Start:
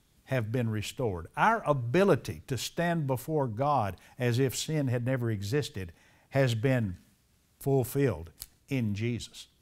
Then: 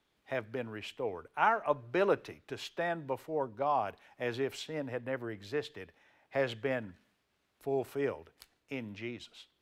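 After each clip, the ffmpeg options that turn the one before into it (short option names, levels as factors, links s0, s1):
-filter_complex "[0:a]acrossover=split=300 4000:gain=0.158 1 0.178[s0][s1][s2];[s0][s1][s2]amix=inputs=3:normalize=0,volume=0.75"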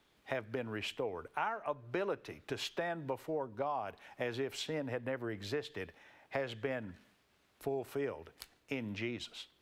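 -af "acompressor=threshold=0.01:ratio=5,volume=1.88"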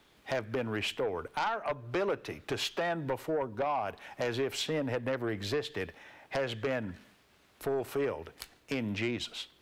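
-af "aeval=exprs='0.0891*sin(PI/2*2.51*val(0)/0.0891)':c=same,volume=0.596"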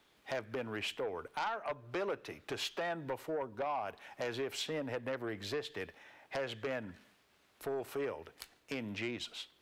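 -af "lowshelf=f=220:g=-6,volume=0.596"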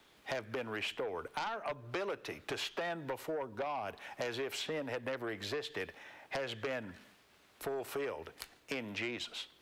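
-filter_complex "[0:a]acrossover=split=390|2500[s0][s1][s2];[s0]acompressor=threshold=0.00316:ratio=4[s3];[s1]acompressor=threshold=0.00794:ratio=4[s4];[s2]acompressor=threshold=0.00447:ratio=4[s5];[s3][s4][s5]amix=inputs=3:normalize=0,volume=1.68"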